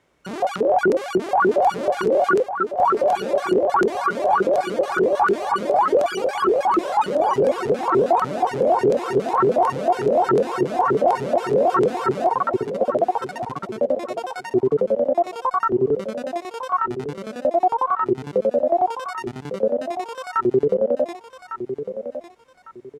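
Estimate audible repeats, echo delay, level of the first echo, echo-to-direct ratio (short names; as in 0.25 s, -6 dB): 3, 1.153 s, -10.0 dB, -9.5 dB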